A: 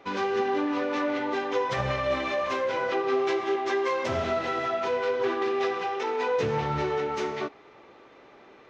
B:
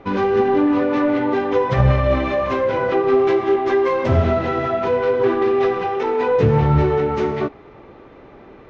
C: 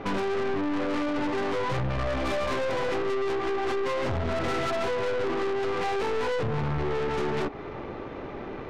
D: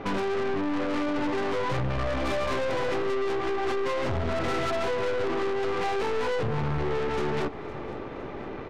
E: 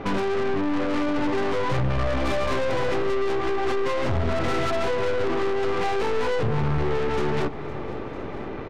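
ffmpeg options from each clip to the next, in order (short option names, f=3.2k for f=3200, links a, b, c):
-af "aemphasis=mode=reproduction:type=riaa,volume=6.5dB"
-af "acompressor=threshold=-23dB:ratio=16,aeval=exprs='(tanh(56.2*val(0)+0.55)-tanh(0.55))/56.2':c=same,volume=8.5dB"
-af "aecho=1:1:510|1020|1530|2040:0.119|0.063|0.0334|0.0177"
-af "lowshelf=f=190:g=3.5,aecho=1:1:957:0.0944,volume=2.5dB"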